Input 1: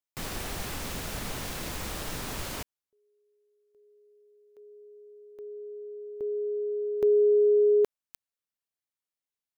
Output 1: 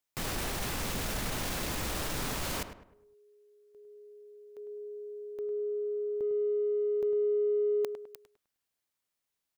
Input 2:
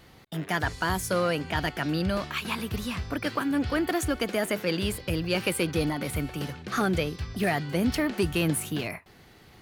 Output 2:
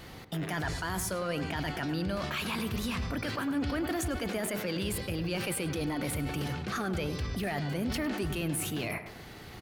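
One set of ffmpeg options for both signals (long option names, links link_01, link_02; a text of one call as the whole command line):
ffmpeg -i in.wav -filter_complex "[0:a]areverse,acompressor=threshold=-37dB:ratio=6:attack=1.2:release=22:knee=6:detection=rms,areverse,asplit=2[link_01][link_02];[link_02]adelay=103,lowpass=frequency=1900:poles=1,volume=-9dB,asplit=2[link_03][link_04];[link_04]adelay=103,lowpass=frequency=1900:poles=1,volume=0.41,asplit=2[link_05][link_06];[link_06]adelay=103,lowpass=frequency=1900:poles=1,volume=0.41,asplit=2[link_07][link_08];[link_08]adelay=103,lowpass=frequency=1900:poles=1,volume=0.41,asplit=2[link_09][link_10];[link_10]adelay=103,lowpass=frequency=1900:poles=1,volume=0.41[link_11];[link_01][link_03][link_05][link_07][link_09][link_11]amix=inputs=6:normalize=0,volume=6.5dB" out.wav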